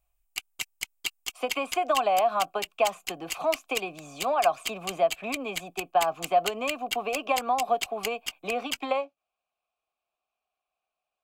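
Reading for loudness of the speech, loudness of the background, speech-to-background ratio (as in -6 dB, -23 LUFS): -28.5 LUFS, -35.5 LUFS, 7.0 dB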